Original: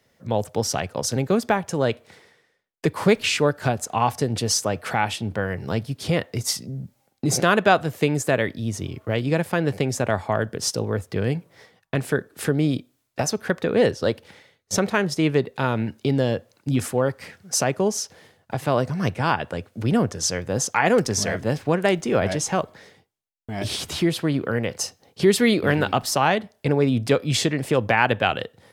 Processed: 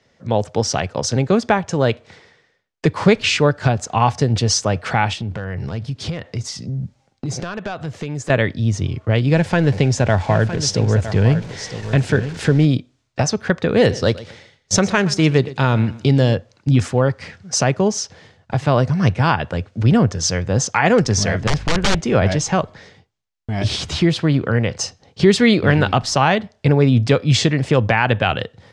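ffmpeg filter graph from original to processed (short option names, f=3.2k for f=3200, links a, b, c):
-filter_complex "[0:a]asettb=1/sr,asplit=3[a][b][c];[a]atrim=end=5.134[d];[b]atrim=start=5.13:end=8.3,asetpts=PTS-STARTPTS,afade=t=in:d=0.004:c=qsin,afade=t=out:st=3.166:d=0.004:c=qsin,acompressor=threshold=-29dB:ratio=4:attack=3.2:release=140:knee=1:detection=peak,volume=23.5dB,asoftclip=hard,volume=-23.5dB[e];[c]atrim=start=8.296[f];[d][e]acrossfade=d=0.004:c1=hsin:c2=qsin[g];[g][f]acrossfade=d=0.004:c1=qsin:c2=hsin,asettb=1/sr,asplit=3[h][i][j];[h]atrim=end=9.334[k];[i]atrim=start=9.33:end=12.65,asetpts=PTS-STARTPTS,afade=t=in:d=0.004:c=qsin,afade=t=out:st=3.316:d=0.004:c=qsin,aeval=exprs='val(0)+0.5*0.0178*sgn(val(0))':c=same,bandreject=f=1.2k:w=8,aecho=1:1:961:0.266,atrim=end_sample=146412[l];[j]atrim=start=12.646[m];[k][l]acrossfade=d=0.004:c1=hsin:c2=qsin[n];[n][m]acrossfade=d=0.004:c1=qsin:c2=hsin,asettb=1/sr,asplit=3[o][p][q];[o]atrim=end=13.694[r];[p]atrim=start=13.69:end=16.35,asetpts=PTS-STARTPTS,afade=t=in:d=0.004:c=qsin,afade=t=out:st=2.656:d=0.004:c=qsin,highshelf=f=6.7k:g=11,aecho=1:1:120|240|360:0.126|0.0403|0.0129,atrim=end_sample=117306[s];[q]atrim=start=16.346[t];[r][s]acrossfade=d=0.004:c1=hsin:c2=qsin[u];[u][t]acrossfade=d=0.004:c1=qsin:c2=hsin,asettb=1/sr,asplit=3[v][w][x];[v]atrim=end=21.474[y];[w]atrim=start=21.47:end=22,asetpts=PTS-STARTPTS,afade=t=in:d=0.004:c=qsin,afade=t=out:st=0.526:d=0.004:c=qsin,aeval=exprs='val(0)+0.00708*(sin(2*PI*50*n/s)+sin(2*PI*2*50*n/s)/2+sin(2*PI*3*50*n/s)/3+sin(2*PI*4*50*n/s)/4+sin(2*PI*5*50*n/s)/5)':c=same,aeval=exprs='(mod(6.31*val(0)+1,2)-1)/6.31':c=same[z];[x]atrim=start=21.996[aa];[y][z]acrossfade=d=0.004:c1=hsin:c2=qsin[ab];[ab][aa]acrossfade=d=0.004:c1=qsin:c2=hsin,lowpass=f=6.9k:w=0.5412,lowpass=f=6.9k:w=1.3066,asubboost=boost=2:cutoff=180,alimiter=level_in=6dB:limit=-1dB:release=50:level=0:latency=1,volume=-1dB"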